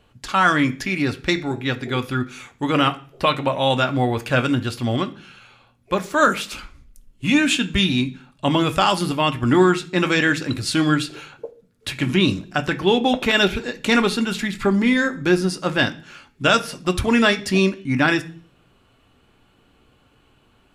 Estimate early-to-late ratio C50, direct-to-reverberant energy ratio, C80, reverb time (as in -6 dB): 17.0 dB, 6.5 dB, 22.0 dB, 0.45 s